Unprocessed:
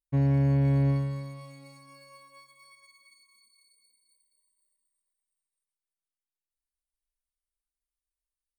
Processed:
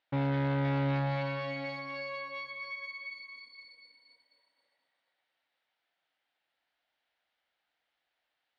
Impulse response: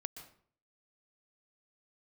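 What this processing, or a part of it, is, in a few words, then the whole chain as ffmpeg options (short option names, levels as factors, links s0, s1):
overdrive pedal into a guitar cabinet: -filter_complex "[0:a]asplit=2[s0][s1];[s1]highpass=f=720:p=1,volume=56.2,asoftclip=type=tanh:threshold=0.133[s2];[s0][s2]amix=inputs=2:normalize=0,lowpass=f=3800:p=1,volume=0.501,highpass=99,equalizer=f=210:t=q:w=4:g=-6,equalizer=f=400:t=q:w=4:g=-9,equalizer=f=730:t=q:w=4:g=4,equalizer=f=1100:t=q:w=4:g=-9,equalizer=f=2500:t=q:w=4:g=-4,lowpass=f=3500:w=0.5412,lowpass=f=3500:w=1.3066,volume=0.562"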